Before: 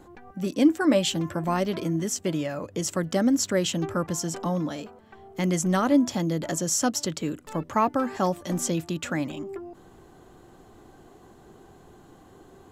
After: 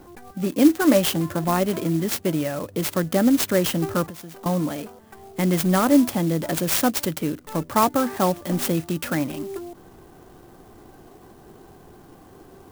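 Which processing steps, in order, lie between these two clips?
4.06–4.46 s: compression 8:1, threshold -40 dBFS, peak gain reduction 15 dB; sampling jitter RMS 0.051 ms; trim +4 dB

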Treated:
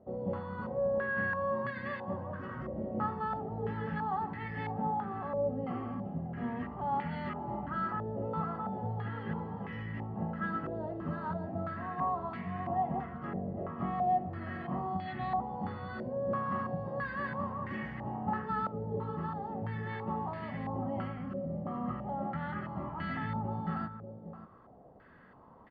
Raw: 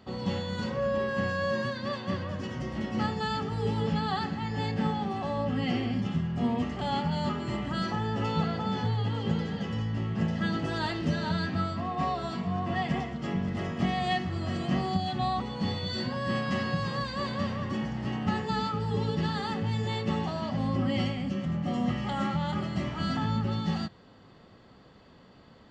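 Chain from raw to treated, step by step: echo from a far wall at 100 m, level -12 dB; gain riding within 4 dB 2 s; step-sequenced low-pass 3 Hz 590–2000 Hz; trim -9 dB

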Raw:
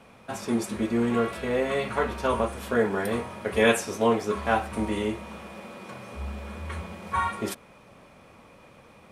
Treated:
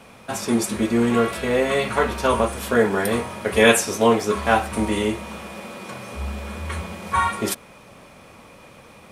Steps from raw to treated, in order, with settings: treble shelf 3.7 kHz +6.5 dB; trim +5.5 dB

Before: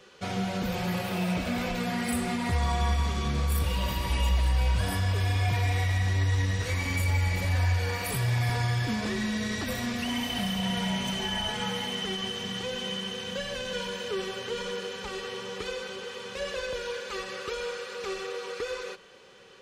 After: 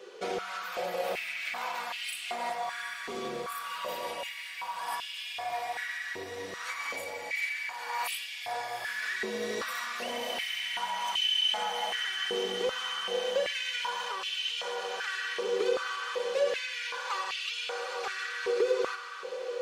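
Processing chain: compression, threshold -32 dBFS, peak gain reduction 10.5 dB; echo that smears into a reverb 782 ms, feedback 71%, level -11 dB; simulated room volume 820 m³, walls furnished, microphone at 0.67 m; step-sequenced high-pass 2.6 Hz 410–2800 Hz

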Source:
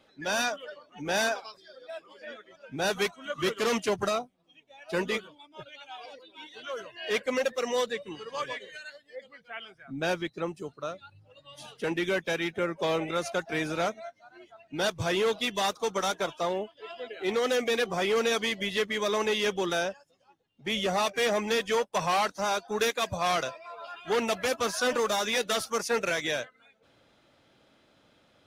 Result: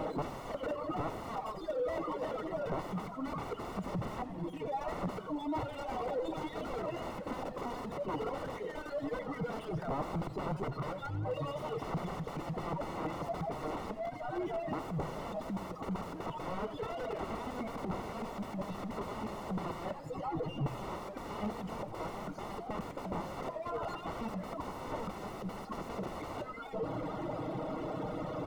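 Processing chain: jump at every zero crossing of -35 dBFS; reverb removal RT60 1.2 s; comb 6.4 ms, depth 61%; in parallel at +0.5 dB: compression 12:1, threshold -39 dBFS, peak gain reduction 20 dB; on the sum: integer overflow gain 28.5 dB; Savitzky-Golay filter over 65 samples; modulated delay 86 ms, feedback 60%, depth 133 cents, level -13 dB; trim +1 dB

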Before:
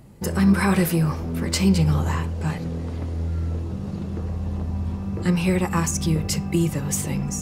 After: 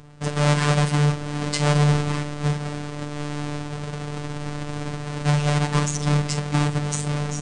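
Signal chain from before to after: square wave that keeps the level; steep low-pass 9.5 kHz 96 dB/octave; doubling 45 ms -11 dB; robot voice 147 Hz; trim -2 dB

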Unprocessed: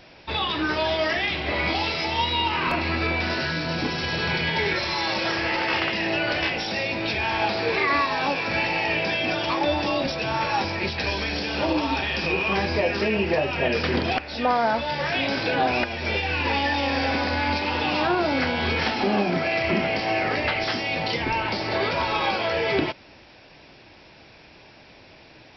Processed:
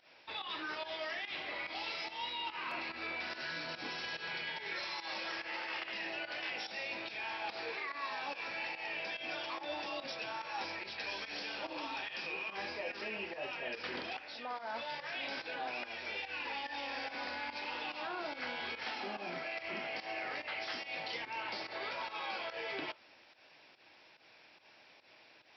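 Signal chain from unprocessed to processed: high-pass 1 kHz 6 dB/octave; treble shelf 5.4 kHz -5.5 dB; reverse; compression, threshold -29 dBFS, peak gain reduction 8.5 dB; reverse; flange 1.4 Hz, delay 6.1 ms, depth 5.4 ms, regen -76%; volume shaper 144 bpm, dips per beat 1, -14 dB, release 124 ms; on a send: reverberation, pre-delay 3 ms, DRR 18 dB; on the sum: trim -3.5 dB

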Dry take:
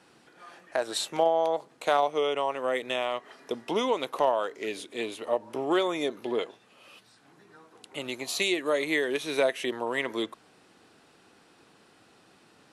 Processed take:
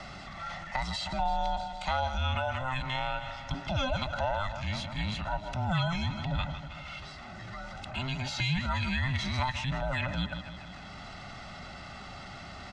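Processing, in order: every band turned upside down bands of 500 Hz; low-pass 6.2 kHz 24 dB/octave; comb 1.5 ms, depth 65%; feedback delay 158 ms, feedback 55%, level -17 dB; transient shaper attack -4 dB, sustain +6 dB; three bands compressed up and down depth 70%; trim -3.5 dB

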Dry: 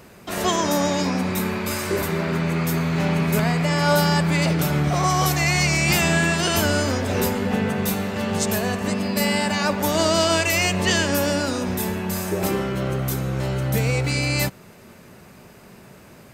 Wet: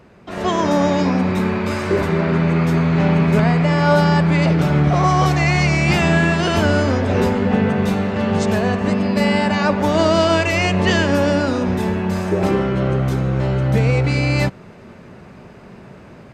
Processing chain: tape spacing loss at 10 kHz 21 dB; level rider gain up to 7 dB

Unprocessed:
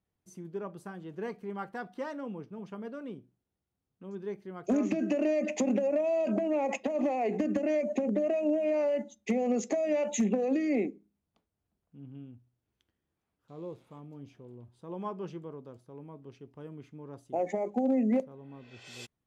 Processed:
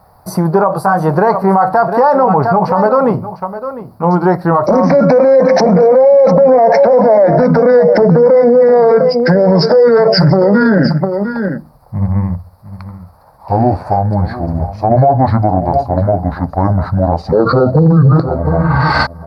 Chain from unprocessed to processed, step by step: pitch bend over the whole clip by -9 st starting unshifted; FFT filter 130 Hz 0 dB, 250 Hz -7 dB, 360 Hz -9 dB, 560 Hz +8 dB, 840 Hz +14 dB, 1.3 kHz +7 dB, 3.2 kHz -22 dB, 4.6 kHz +3 dB, 6.7 kHz -21 dB, 11 kHz +1 dB; in parallel at -0.5 dB: compression, threshold -45 dBFS, peak gain reduction 23.5 dB; on the sum: vibrato 2.3 Hz 6.5 cents; on a send: delay 703 ms -15 dB; on the sum: loudness maximiser +31.5 dB; trim -1 dB

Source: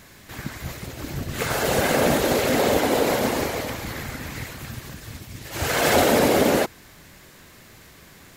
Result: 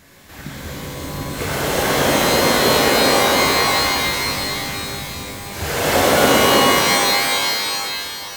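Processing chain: pitch-shifted reverb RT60 2.9 s, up +12 st, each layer -2 dB, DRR -3.5 dB; trim -2.5 dB

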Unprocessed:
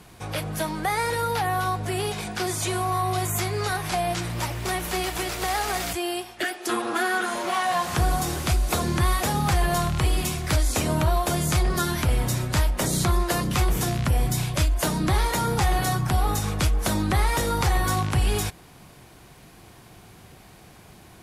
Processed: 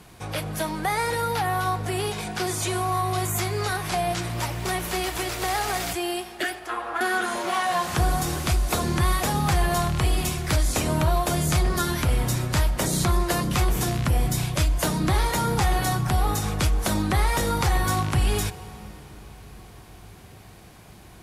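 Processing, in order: 6.59–7.01 s: three-band isolator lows -21 dB, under 500 Hz, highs -16 dB, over 2.4 kHz; reverberation RT60 5.6 s, pre-delay 47 ms, DRR 15.5 dB

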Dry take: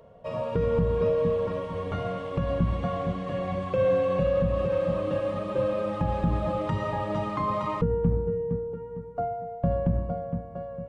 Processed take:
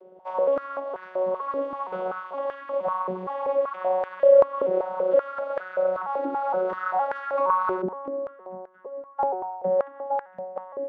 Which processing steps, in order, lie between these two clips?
vocoder on a broken chord bare fifth, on F#3, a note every 466 ms; in parallel at -0.5 dB: gain riding within 4 dB 0.5 s; on the sum: dynamic bell 1.1 kHz, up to +5 dB, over -37 dBFS, Q 1.2; step-sequenced high-pass 5.2 Hz 390–1600 Hz; trim -7.5 dB

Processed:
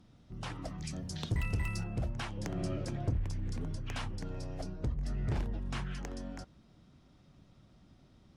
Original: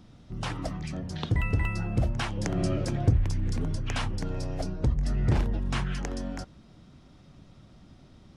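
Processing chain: 0.78–1.84 s: tone controls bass +3 dB, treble +13 dB; one-sided clip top -21.5 dBFS; trim -8 dB

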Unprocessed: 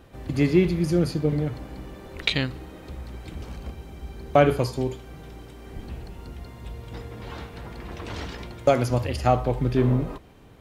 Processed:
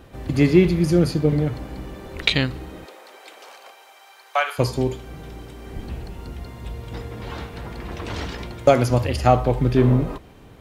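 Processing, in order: 2.84–4.58 s: high-pass 410 Hz -> 950 Hz 24 dB/octave; trim +4.5 dB

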